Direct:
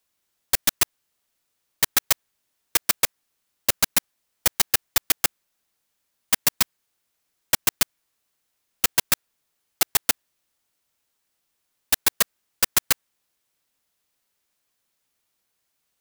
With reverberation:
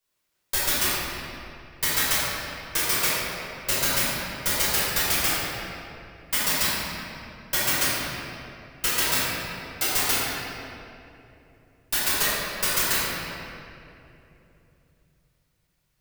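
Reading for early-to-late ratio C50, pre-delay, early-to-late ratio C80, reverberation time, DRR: −4.5 dB, 5 ms, −2.0 dB, 2.9 s, −11.5 dB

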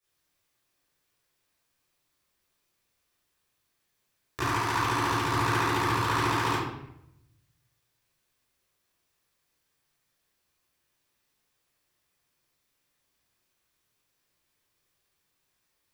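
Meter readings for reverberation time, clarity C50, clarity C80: 0.80 s, −1.0 dB, 4.0 dB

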